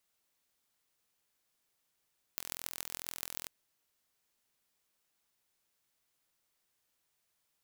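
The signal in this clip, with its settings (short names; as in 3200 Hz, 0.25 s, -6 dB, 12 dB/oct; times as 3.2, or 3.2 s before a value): pulse train 42.3/s, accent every 6, -8.5 dBFS 1.11 s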